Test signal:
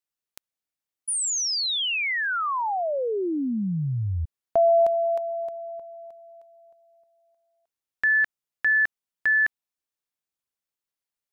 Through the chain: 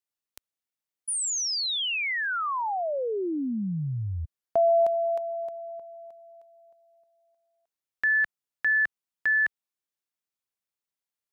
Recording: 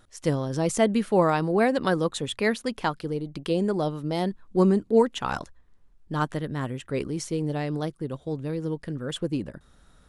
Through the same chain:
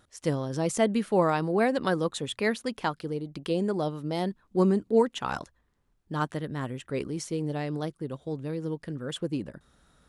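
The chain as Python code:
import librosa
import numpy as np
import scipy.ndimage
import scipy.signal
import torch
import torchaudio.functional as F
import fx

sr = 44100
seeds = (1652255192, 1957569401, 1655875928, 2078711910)

y = fx.highpass(x, sr, hz=68.0, slope=6)
y = F.gain(torch.from_numpy(y), -2.5).numpy()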